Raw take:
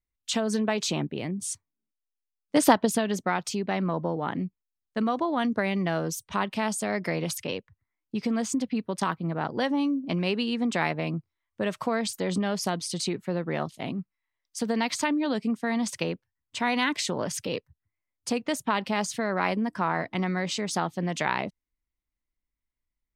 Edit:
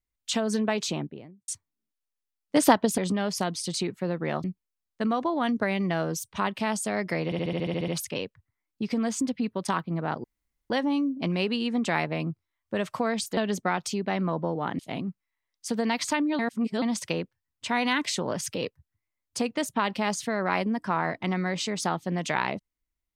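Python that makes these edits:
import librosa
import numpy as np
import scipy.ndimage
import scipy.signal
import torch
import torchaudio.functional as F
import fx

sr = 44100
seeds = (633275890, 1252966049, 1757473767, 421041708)

y = fx.studio_fade_out(x, sr, start_s=0.74, length_s=0.74)
y = fx.edit(y, sr, fx.swap(start_s=2.98, length_s=1.42, other_s=12.24, other_length_s=1.46),
    fx.stutter(start_s=7.21, slice_s=0.07, count=10),
    fx.insert_room_tone(at_s=9.57, length_s=0.46),
    fx.reverse_span(start_s=15.3, length_s=0.43), tone=tone)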